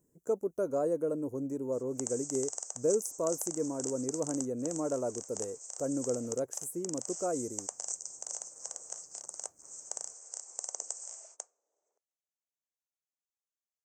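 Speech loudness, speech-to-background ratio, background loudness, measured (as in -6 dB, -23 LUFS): -35.0 LUFS, 5.0 dB, -40.0 LUFS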